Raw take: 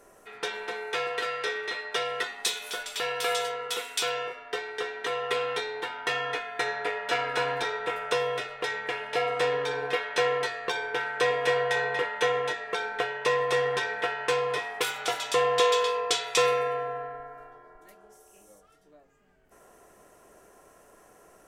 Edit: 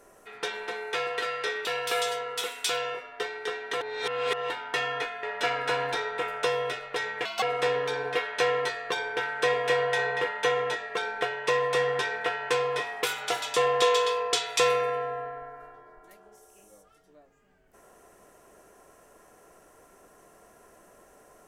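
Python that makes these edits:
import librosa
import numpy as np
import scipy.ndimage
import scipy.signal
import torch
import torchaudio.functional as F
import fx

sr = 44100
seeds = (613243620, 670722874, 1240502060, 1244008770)

y = fx.edit(x, sr, fx.cut(start_s=1.65, length_s=1.33),
    fx.reverse_span(start_s=5.14, length_s=0.69),
    fx.cut(start_s=6.56, length_s=0.35),
    fx.speed_span(start_s=8.93, length_s=0.27, speed=1.56), tone=tone)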